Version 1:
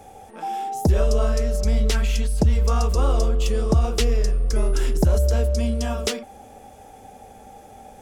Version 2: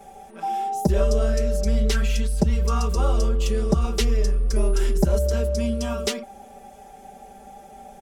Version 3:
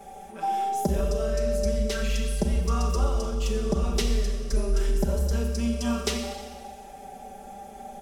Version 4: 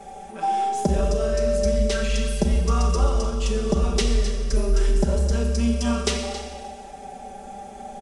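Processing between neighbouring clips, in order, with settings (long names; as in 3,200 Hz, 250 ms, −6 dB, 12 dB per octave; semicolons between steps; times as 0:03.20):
comb filter 5.1 ms, depth 100%; level −4 dB
downward compressor, threshold −22 dBFS, peak gain reduction 8.5 dB; four-comb reverb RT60 1.5 s, combs from 30 ms, DRR 3.5 dB
single-tap delay 273 ms −14 dB; level +4 dB; IMA ADPCM 88 kbit/s 22,050 Hz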